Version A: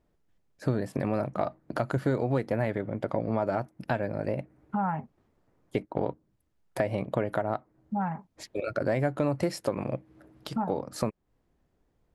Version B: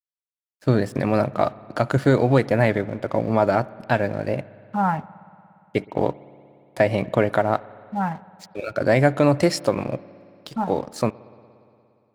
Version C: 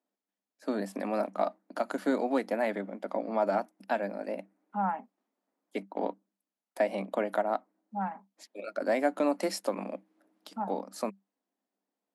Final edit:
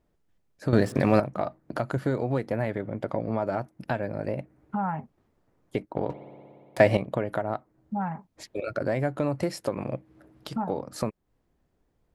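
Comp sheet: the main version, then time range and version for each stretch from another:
A
0:00.73–0:01.20: punch in from B
0:06.10–0:06.97: punch in from B
not used: C

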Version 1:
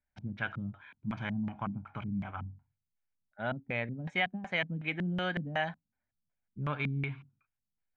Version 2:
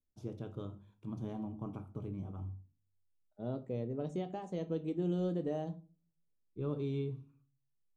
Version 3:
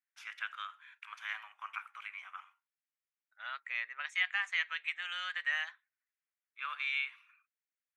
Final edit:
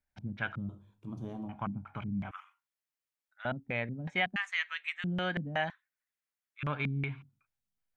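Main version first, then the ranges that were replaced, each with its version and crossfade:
1
0:00.69–0:01.49: punch in from 2
0:02.31–0:03.45: punch in from 3
0:04.36–0:05.04: punch in from 3
0:05.70–0:06.63: punch in from 3

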